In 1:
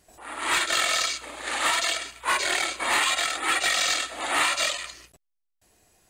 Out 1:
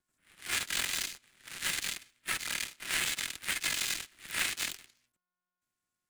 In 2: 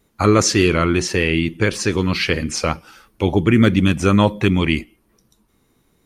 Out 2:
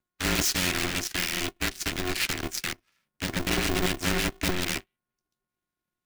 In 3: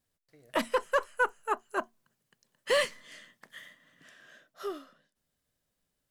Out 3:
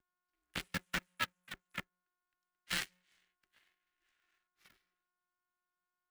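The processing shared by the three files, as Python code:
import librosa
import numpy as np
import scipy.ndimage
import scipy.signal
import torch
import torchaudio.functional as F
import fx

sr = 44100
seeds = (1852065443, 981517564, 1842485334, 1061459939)

y = x + 10.0 ** (-29.0 / 20.0) * np.sin(2.0 * np.pi * 420.0 * np.arange(len(x)) / sr)
y = 10.0 ** (-14.0 / 20.0) * (np.abs((y / 10.0 ** (-14.0 / 20.0) + 3.0) % 4.0 - 2.0) - 1.0)
y = fx.power_curve(y, sr, exponent=3.0)
y = scipy.signal.sosfilt(scipy.signal.cheby1(5, 1.0, [210.0, 1500.0], 'bandstop', fs=sr, output='sos'), y)
y = y * np.sign(np.sin(2.0 * np.pi * 180.0 * np.arange(len(y)) / sr))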